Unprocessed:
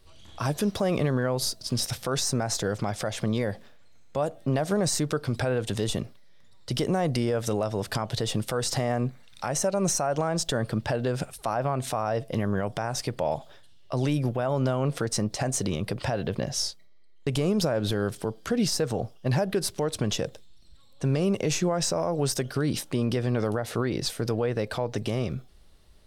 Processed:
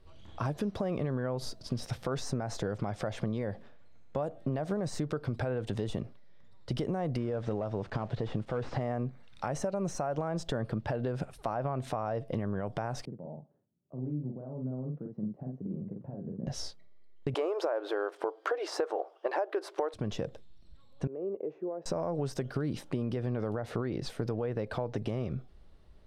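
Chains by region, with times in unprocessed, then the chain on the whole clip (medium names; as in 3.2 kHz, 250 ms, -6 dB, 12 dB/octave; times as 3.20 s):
7.17–8.81 s: one-bit delta coder 64 kbps, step -44.5 dBFS + distance through air 64 m
13.05–16.47 s: ladder band-pass 220 Hz, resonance 40% + doubling 47 ms -3 dB
17.34–19.94 s: brick-wall FIR high-pass 300 Hz + peaking EQ 1 kHz +13.5 dB 2.8 oct
21.07–21.86 s: ladder band-pass 460 Hz, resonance 50% + upward compressor, threshold -53 dBFS
whole clip: low-pass 1.3 kHz 6 dB/octave; compression, threshold -29 dBFS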